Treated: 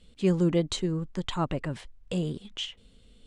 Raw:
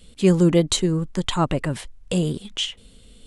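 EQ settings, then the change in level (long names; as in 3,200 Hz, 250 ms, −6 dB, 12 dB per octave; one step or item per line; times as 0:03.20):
high-frequency loss of the air 65 metres
−7.5 dB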